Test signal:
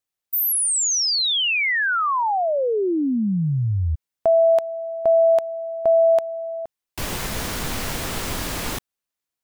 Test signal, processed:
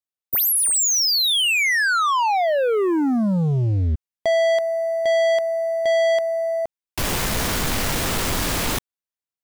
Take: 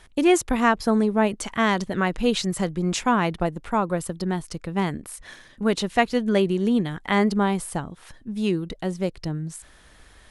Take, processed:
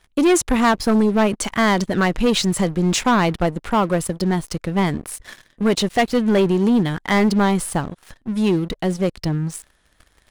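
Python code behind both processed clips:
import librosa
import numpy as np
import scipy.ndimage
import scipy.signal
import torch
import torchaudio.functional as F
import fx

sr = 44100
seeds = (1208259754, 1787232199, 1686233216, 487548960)

y = fx.leveller(x, sr, passes=3)
y = y * librosa.db_to_amplitude(-4.0)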